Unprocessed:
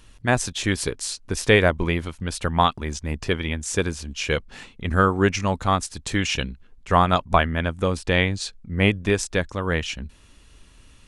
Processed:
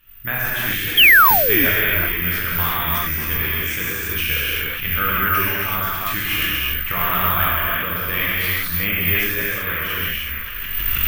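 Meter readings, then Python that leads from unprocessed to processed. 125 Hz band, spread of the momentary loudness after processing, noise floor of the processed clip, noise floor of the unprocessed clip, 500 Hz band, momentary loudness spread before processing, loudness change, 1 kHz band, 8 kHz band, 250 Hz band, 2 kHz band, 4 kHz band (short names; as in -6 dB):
-3.0 dB, 10 LU, -27 dBFS, -52 dBFS, -5.5 dB, 11 LU, +6.0 dB, +2.0 dB, -2.0 dB, -4.5 dB, +9.0 dB, +7.5 dB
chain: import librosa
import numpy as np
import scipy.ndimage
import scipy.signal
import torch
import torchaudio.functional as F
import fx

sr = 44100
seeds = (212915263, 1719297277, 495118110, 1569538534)

p1 = fx.recorder_agc(x, sr, target_db=-10.5, rise_db_per_s=25.0, max_gain_db=30)
p2 = fx.hum_notches(p1, sr, base_hz=50, count=2)
p3 = p2 + fx.echo_banded(p2, sr, ms=596, feedback_pct=60, hz=1900.0, wet_db=-10, dry=0)
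p4 = fx.rev_gated(p3, sr, seeds[0], gate_ms=410, shape='flat', drr_db=-8.0)
p5 = fx.spec_paint(p4, sr, seeds[1], shape='fall', start_s=0.97, length_s=0.69, low_hz=240.0, high_hz=3400.0, level_db=-5.0)
p6 = fx.low_shelf(p5, sr, hz=97.0, db=10.5)
p7 = (np.kron(scipy.signal.resample_poly(p6, 1, 3), np.eye(3)[0]) * 3)[:len(p6)]
p8 = fx.band_shelf(p7, sr, hz=2000.0, db=13.5, octaves=1.7)
p9 = fx.sustainer(p8, sr, db_per_s=30.0)
y = p9 * librosa.db_to_amplitude(-18.0)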